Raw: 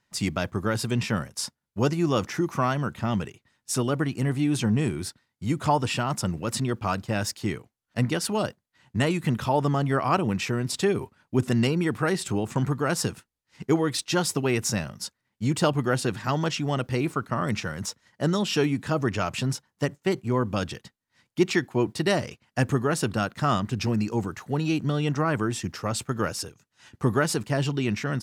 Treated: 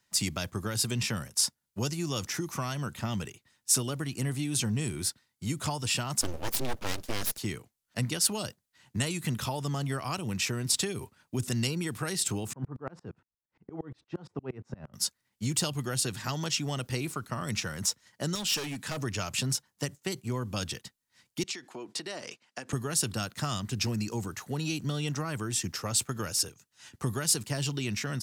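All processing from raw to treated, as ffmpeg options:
-filter_complex "[0:a]asettb=1/sr,asplit=3[s0][s1][s2];[s0]atrim=end=6.214[s3];[s1]atrim=start=6.21:end=7.38,asetpts=PTS-STARTPTS,afade=t=in:d=0.004:c=qsin,afade=t=out:st=1.166:d=0.004:c=qsin,equalizer=f=410:t=o:w=0.36:g=10.5,bandreject=f=8000:w=5.8,aeval=exprs='abs(val(0))':c=same[s4];[s2]atrim=start=7.376[s5];[s3][s4]acrossfade=d=0.004:c1=hsin:c2=qsin[s6];[s6][s5]acrossfade=d=0.004:c1=qsin:c2=hsin,asettb=1/sr,asplit=3[s7][s8][s9];[s7]atrim=end=12.534[s10];[s8]atrim=start=12.53:end=14.94,asetpts=PTS-STARTPTS,afade=t=in:d=0.004:c=qsin,afade=t=out:st=2.406:d=0.004:c=qsin,lowpass=1100,aeval=exprs='val(0)*pow(10,-32*if(lt(mod(-8.6*n/s,1),2*abs(-8.6)/1000),1-mod(-8.6*n/s,1)/(2*abs(-8.6)/1000),(mod(-8.6*n/s,1)-2*abs(-8.6)/1000)/(1-2*abs(-8.6)/1000))/20)':c=same[s11];[s9]atrim=start=14.936[s12];[s10][s11]acrossfade=d=0.004:c1=hsin:c2=qsin[s13];[s13][s12]acrossfade=d=0.004:c1=qsin:c2=hsin,asettb=1/sr,asplit=3[s14][s15][s16];[s14]atrim=end=18.354[s17];[s15]atrim=start=18.35:end=18.97,asetpts=PTS-STARTPTS,afade=t=in:d=0.004:c=qsin,afade=t=out:st=0.616:d=0.004:c=qsin,highpass=f=190:p=1,asoftclip=type=hard:threshold=0.0562,equalizer=f=340:w=1.8:g=-6.5[s18];[s16]atrim=start=18.966[s19];[s17][s18]acrossfade=d=0.004:c1=hsin:c2=qsin[s20];[s20][s19]acrossfade=d=0.004:c1=qsin:c2=hsin,asettb=1/sr,asplit=3[s21][s22][s23];[s21]atrim=end=21.434[s24];[s22]atrim=start=21.43:end=22.73,asetpts=PTS-STARTPTS,afade=t=in:d=0.004:c=qsin,afade=t=out:st=1.296:d=0.004:c=qsin,acompressor=threshold=0.0316:ratio=12:attack=3.2:release=140:knee=1:detection=peak,highpass=290,lowpass=7600[s25];[s23]atrim=start=22.726[s26];[s24][s25]acrossfade=d=0.004:c1=hsin:c2=qsin[s27];[s27][s26]acrossfade=d=0.004:c1=qsin:c2=hsin,highshelf=f=3700:g=11.5,acrossover=split=140|3000[s28][s29][s30];[s29]acompressor=threshold=0.0355:ratio=6[s31];[s28][s31][s30]amix=inputs=3:normalize=0,volume=0.668"

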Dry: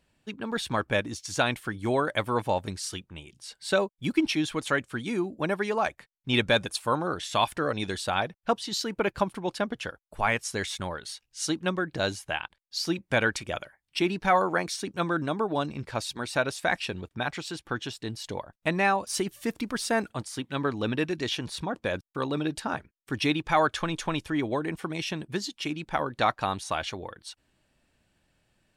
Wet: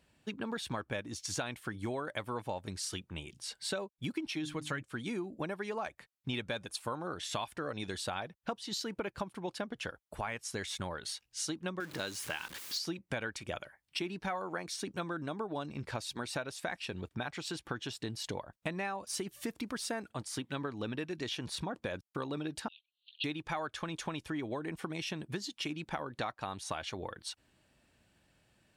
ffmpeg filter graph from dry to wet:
-filter_complex "[0:a]asettb=1/sr,asplit=3[s0][s1][s2];[s0]atrim=end=4.314[s3];[s1]atrim=start=4.31:end=4.83,asetpts=PTS-STARTPTS,afade=t=in:d=0.004:c=qsin,afade=t=out:st=0.516:d=0.004:c=qsin,bandreject=f=50:t=h:w=6,bandreject=f=100:t=h:w=6,bandreject=f=150:t=h:w=6,bandreject=f=200:t=h:w=6,bandreject=f=250:t=h:w=6,bandreject=f=300:t=h:w=6,aecho=1:1:6.5:0.39,atrim=end_sample=22932,asubboost=boost=11.5:cutoff=230[s4];[s2]atrim=start=4.826[s5];[s3][s4]acrossfade=d=0.004:c1=hsin:c2=qsin[s6];[s6][s5]acrossfade=d=0.004:c1=qsin:c2=hsin,asettb=1/sr,asplit=3[s7][s8][s9];[s7]atrim=end=11.804[s10];[s8]atrim=start=11.8:end=12.79,asetpts=PTS-STARTPTS,afade=t=in:d=0.004:c=qsin,afade=t=out:st=0.986:d=0.004:c=qsin,aeval=exprs='val(0)+0.5*0.0178*sgn(val(0))':c=same,highpass=f=290:p=1,equalizer=f=690:w=2.2:g=-7.5[s11];[s9]atrim=start=12.786[s12];[s10][s11]acrossfade=d=0.004:c1=hsin:c2=qsin[s13];[s13][s12]acrossfade=d=0.004:c1=qsin:c2=hsin,asettb=1/sr,asplit=3[s14][s15][s16];[s14]atrim=end=22.684[s17];[s15]atrim=start=22.68:end=23.24,asetpts=PTS-STARTPTS,afade=t=in:d=0.004:c=qsin,afade=t=out:st=0.556:d=0.004:c=qsin,acompressor=mode=upward:threshold=0.01:ratio=2.5:attack=3.2:release=140:knee=2.83:detection=peak,asuperpass=centerf=3400:order=12:qfactor=2.1[s18];[s16]atrim=start=23.236[s19];[s17][s18]acrossfade=d=0.004:c1=hsin:c2=qsin[s20];[s20][s19]acrossfade=d=0.004:c1=qsin:c2=hsin,acompressor=threshold=0.0158:ratio=6,highpass=45,volume=1.12"

